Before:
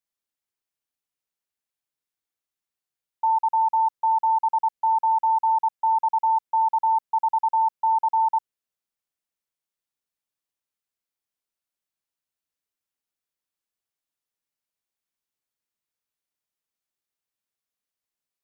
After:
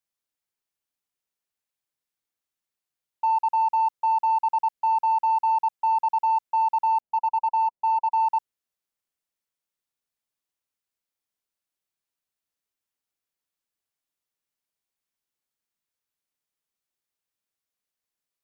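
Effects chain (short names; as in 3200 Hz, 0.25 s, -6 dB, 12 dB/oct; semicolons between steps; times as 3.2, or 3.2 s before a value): 7–8.12 Chebyshev low-pass 960 Hz, order 6; in parallel at -8.5 dB: soft clip -25 dBFS, distortion -13 dB; on the sum: gain -2.5 dB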